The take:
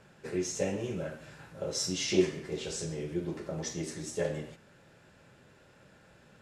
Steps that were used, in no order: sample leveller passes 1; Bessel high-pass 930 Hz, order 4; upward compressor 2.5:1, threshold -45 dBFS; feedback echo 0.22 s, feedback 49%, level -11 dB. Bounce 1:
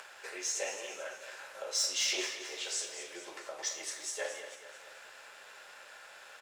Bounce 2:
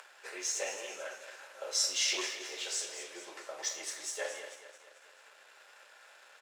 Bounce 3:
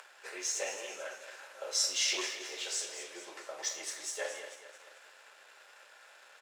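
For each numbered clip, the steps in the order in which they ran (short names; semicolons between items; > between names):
Bessel high-pass > upward compressor > sample leveller > feedback echo; feedback echo > upward compressor > sample leveller > Bessel high-pass; upward compressor > feedback echo > sample leveller > Bessel high-pass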